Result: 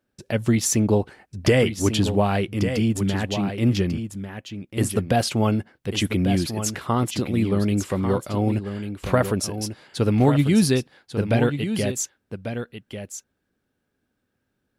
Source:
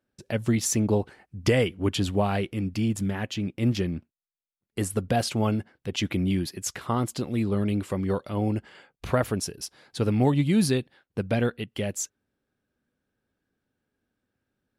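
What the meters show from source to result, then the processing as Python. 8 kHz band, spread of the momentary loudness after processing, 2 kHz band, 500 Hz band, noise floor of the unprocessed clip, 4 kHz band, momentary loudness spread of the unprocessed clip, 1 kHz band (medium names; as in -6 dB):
+4.5 dB, 13 LU, +4.5 dB, +4.5 dB, under -85 dBFS, +4.5 dB, 10 LU, +4.5 dB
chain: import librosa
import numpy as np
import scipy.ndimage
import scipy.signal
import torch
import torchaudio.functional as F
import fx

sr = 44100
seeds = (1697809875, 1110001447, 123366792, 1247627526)

y = x + 10.0 ** (-9.0 / 20.0) * np.pad(x, (int(1144 * sr / 1000.0), 0))[:len(x)]
y = y * 10.0 ** (4.0 / 20.0)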